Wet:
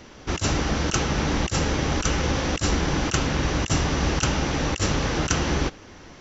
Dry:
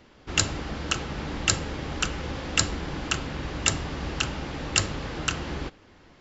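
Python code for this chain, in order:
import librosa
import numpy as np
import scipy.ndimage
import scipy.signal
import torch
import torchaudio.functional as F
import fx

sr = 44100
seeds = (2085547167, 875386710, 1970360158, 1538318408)

y = fx.peak_eq(x, sr, hz=5900.0, db=11.0, octaves=0.22)
y = fx.over_compress(y, sr, threshold_db=-28.0, ratio=-0.5)
y = y * librosa.db_to_amplitude(7.0)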